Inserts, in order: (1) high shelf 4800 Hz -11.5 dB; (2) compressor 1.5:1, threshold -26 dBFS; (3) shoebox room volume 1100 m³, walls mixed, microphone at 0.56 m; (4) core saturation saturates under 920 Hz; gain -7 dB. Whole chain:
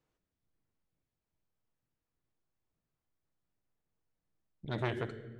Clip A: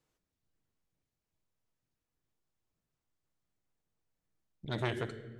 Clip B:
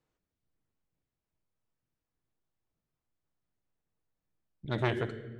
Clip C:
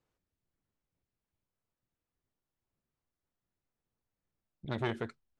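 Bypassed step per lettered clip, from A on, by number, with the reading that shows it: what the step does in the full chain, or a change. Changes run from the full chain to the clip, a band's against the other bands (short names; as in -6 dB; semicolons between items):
1, 4 kHz band +3.5 dB; 2, mean gain reduction 3.0 dB; 3, 125 Hz band -2.0 dB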